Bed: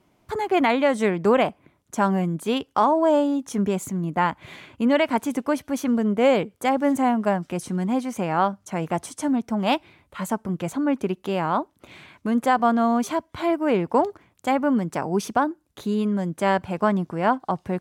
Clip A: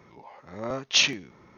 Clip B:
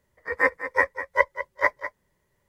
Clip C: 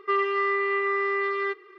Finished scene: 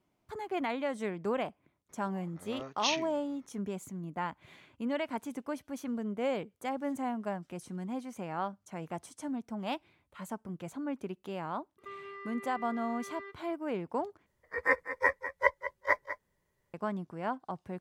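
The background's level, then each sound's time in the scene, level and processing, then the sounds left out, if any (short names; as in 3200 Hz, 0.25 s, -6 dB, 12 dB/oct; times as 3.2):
bed -14 dB
1.89 add A -11.5 dB
11.78 add C -15 dB + compressor, threshold -27 dBFS
14.26 replace with B -6 dB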